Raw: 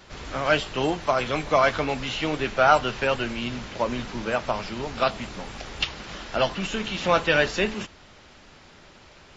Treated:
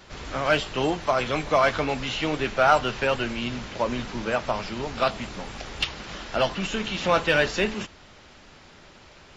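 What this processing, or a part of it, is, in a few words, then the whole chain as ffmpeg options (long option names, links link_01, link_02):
parallel distortion: -filter_complex "[0:a]asplit=2[link_01][link_02];[link_02]asoftclip=type=hard:threshold=-19dB,volume=-8dB[link_03];[link_01][link_03]amix=inputs=2:normalize=0,volume=-2.5dB"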